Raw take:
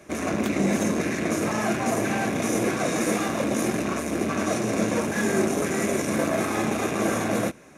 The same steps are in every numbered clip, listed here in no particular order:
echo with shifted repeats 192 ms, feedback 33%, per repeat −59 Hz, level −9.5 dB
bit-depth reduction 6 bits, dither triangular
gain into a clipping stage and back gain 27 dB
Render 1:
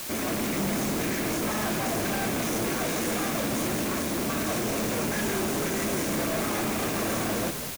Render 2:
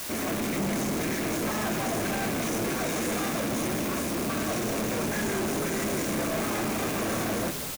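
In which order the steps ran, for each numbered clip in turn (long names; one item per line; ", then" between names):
gain into a clipping stage and back, then echo with shifted repeats, then bit-depth reduction
bit-depth reduction, then gain into a clipping stage and back, then echo with shifted repeats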